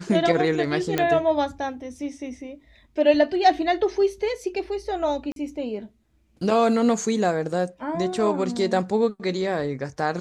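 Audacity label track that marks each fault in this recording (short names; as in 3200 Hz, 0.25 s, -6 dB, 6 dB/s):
0.980000	0.980000	pop -8 dBFS
5.320000	5.360000	gap 42 ms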